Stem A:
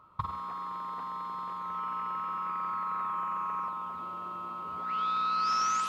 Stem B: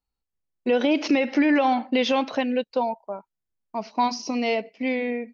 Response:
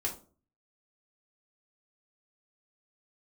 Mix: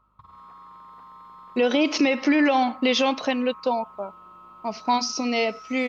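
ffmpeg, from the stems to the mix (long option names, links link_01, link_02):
-filter_complex "[0:a]alimiter=level_in=4.5dB:limit=-24dB:level=0:latency=1:release=201,volume=-4.5dB,aeval=exprs='val(0)+0.000891*(sin(2*PI*50*n/s)+sin(2*PI*2*50*n/s)/2+sin(2*PI*3*50*n/s)/3+sin(2*PI*4*50*n/s)/4+sin(2*PI*5*50*n/s)/5)':channel_layout=same,volume=-8.5dB[link_01];[1:a]highshelf=frequency=4500:gain=10.5,adelay=900,volume=0dB[link_02];[link_01][link_02]amix=inputs=2:normalize=0"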